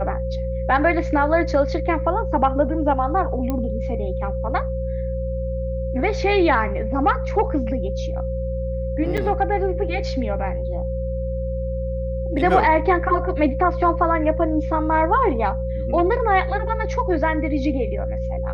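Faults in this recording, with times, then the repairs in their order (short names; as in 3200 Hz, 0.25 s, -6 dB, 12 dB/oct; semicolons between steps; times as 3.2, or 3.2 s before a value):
hum 60 Hz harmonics 3 -26 dBFS
tone 530 Hz -27 dBFS
3.5 pop -12 dBFS
9.17–9.18 gap 6.7 ms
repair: de-click; notch 530 Hz, Q 30; de-hum 60 Hz, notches 3; interpolate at 9.17, 6.7 ms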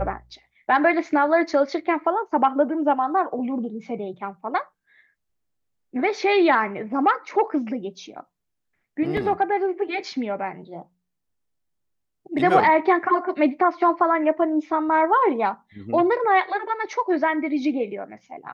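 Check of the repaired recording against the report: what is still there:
none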